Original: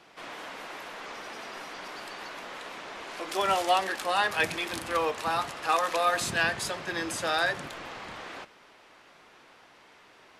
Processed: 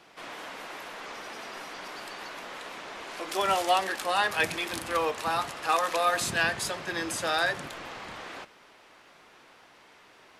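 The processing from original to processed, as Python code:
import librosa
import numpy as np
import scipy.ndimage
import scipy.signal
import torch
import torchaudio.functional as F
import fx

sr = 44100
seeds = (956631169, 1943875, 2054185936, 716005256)

y = fx.high_shelf(x, sr, hz=9000.0, db=4.0)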